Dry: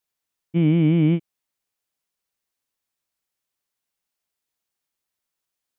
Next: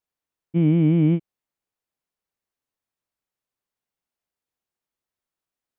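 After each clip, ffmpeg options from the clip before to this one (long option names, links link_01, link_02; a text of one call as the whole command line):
ffmpeg -i in.wav -af "highshelf=frequency=2000:gain=-9.5" out.wav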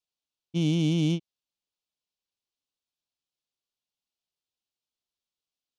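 ffmpeg -i in.wav -af "adynamicsmooth=sensitivity=7.5:basefreq=2100,aexciter=amount=14.1:drive=6.6:freq=2900,volume=-7dB" out.wav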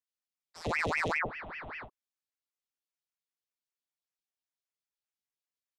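ffmpeg -i in.wav -filter_complex "[0:a]acrossover=split=350|1600[link_01][link_02][link_03];[link_01]adelay=100[link_04];[link_02]adelay=700[link_05];[link_04][link_05][link_03]amix=inputs=3:normalize=0,aeval=exprs='(tanh(14.1*val(0)+0.7)-tanh(0.7))/14.1':channel_layout=same,aeval=exprs='val(0)*sin(2*PI*1300*n/s+1300*0.8/5.1*sin(2*PI*5.1*n/s))':channel_layout=same" out.wav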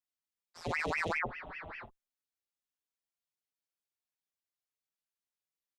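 ffmpeg -i in.wav -filter_complex "[0:a]asplit=2[link_01][link_02];[link_02]adelay=5.1,afreqshift=1.5[link_03];[link_01][link_03]amix=inputs=2:normalize=1" out.wav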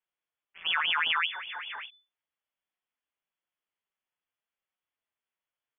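ffmpeg -i in.wav -af "lowpass=frequency=3000:width_type=q:width=0.5098,lowpass=frequency=3000:width_type=q:width=0.6013,lowpass=frequency=3000:width_type=q:width=0.9,lowpass=frequency=3000:width_type=q:width=2.563,afreqshift=-3500,volume=6.5dB" out.wav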